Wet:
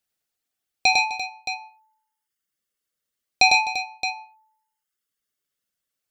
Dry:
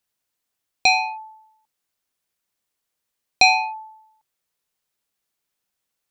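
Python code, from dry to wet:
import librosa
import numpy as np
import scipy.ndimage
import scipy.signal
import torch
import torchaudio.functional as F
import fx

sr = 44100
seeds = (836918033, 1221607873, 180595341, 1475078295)

y = fx.dereverb_blind(x, sr, rt60_s=1.7)
y = fx.notch(y, sr, hz=1000.0, q=6.2)
y = fx.echo_multitap(y, sr, ms=(78, 102, 132, 255, 343, 620), db=(-18.0, -3.0, -12.0, -16.0, -12.0, -10.5))
y = y * librosa.db_to_amplitude(-2.0)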